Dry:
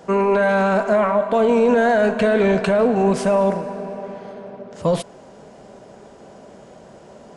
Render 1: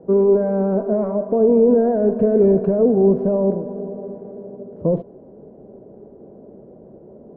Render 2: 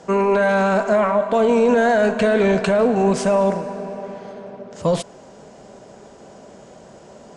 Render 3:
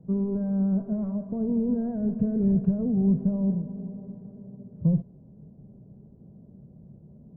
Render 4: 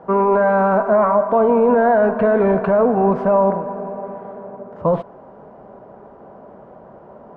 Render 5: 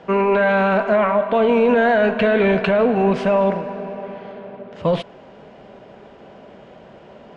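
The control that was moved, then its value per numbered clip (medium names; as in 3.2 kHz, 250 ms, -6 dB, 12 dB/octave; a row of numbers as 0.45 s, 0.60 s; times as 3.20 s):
resonant low-pass, frequency: 400 Hz, 7.6 kHz, 150 Hz, 1.1 kHz, 2.9 kHz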